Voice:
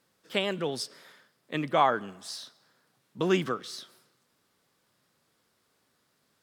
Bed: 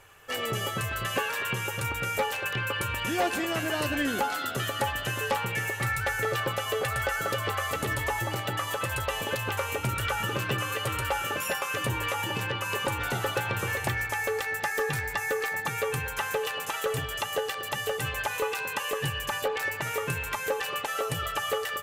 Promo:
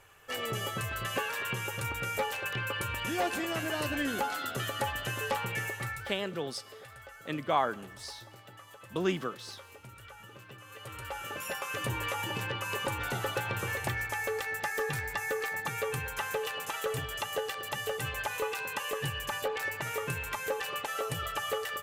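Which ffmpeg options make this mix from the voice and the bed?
ffmpeg -i stem1.wav -i stem2.wav -filter_complex "[0:a]adelay=5750,volume=-4.5dB[link_01];[1:a]volume=13dB,afade=type=out:start_time=5.61:duration=0.6:silence=0.141254,afade=type=in:start_time=10.63:duration=1.29:silence=0.141254[link_02];[link_01][link_02]amix=inputs=2:normalize=0" out.wav

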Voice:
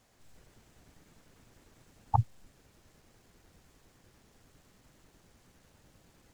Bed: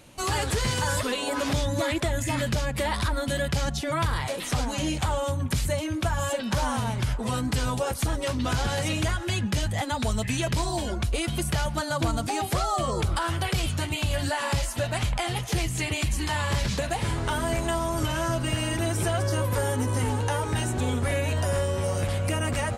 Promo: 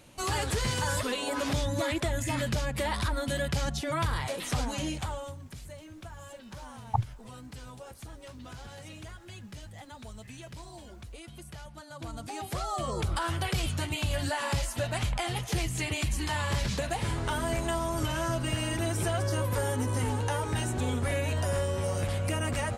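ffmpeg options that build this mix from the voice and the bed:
ffmpeg -i stem1.wav -i stem2.wav -filter_complex "[0:a]adelay=4800,volume=-1dB[link_01];[1:a]volume=11.5dB,afade=type=out:start_time=4.68:duration=0.75:silence=0.177828,afade=type=in:start_time=11.89:duration=1.34:silence=0.177828[link_02];[link_01][link_02]amix=inputs=2:normalize=0" out.wav

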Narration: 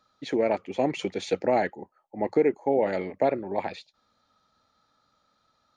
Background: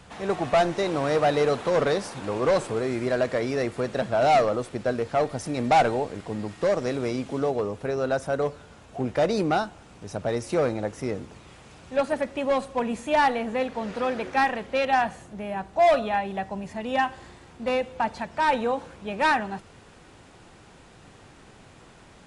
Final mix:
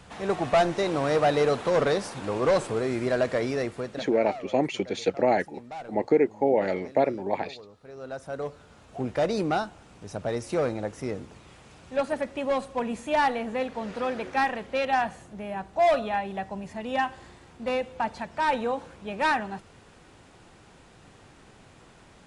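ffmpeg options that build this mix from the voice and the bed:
ffmpeg -i stem1.wav -i stem2.wav -filter_complex "[0:a]adelay=3750,volume=1dB[link_01];[1:a]volume=17dB,afade=type=out:start_time=3.45:duration=0.76:silence=0.105925,afade=type=in:start_time=7.83:duration=1.14:silence=0.133352[link_02];[link_01][link_02]amix=inputs=2:normalize=0" out.wav

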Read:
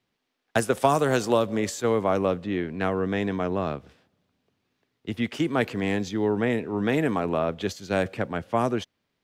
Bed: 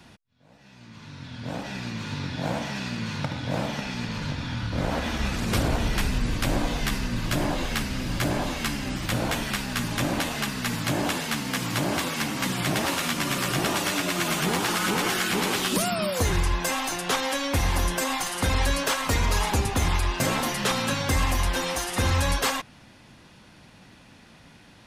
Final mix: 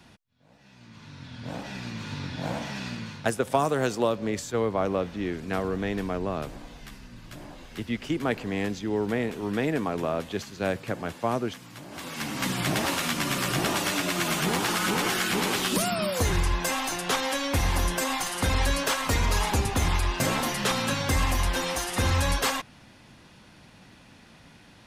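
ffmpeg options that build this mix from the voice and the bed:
ffmpeg -i stem1.wav -i stem2.wav -filter_complex "[0:a]adelay=2700,volume=-3dB[link_01];[1:a]volume=13.5dB,afade=type=out:start_time=2.9:duration=0.4:silence=0.188365,afade=type=in:start_time=11.9:duration=0.57:silence=0.149624[link_02];[link_01][link_02]amix=inputs=2:normalize=0" out.wav

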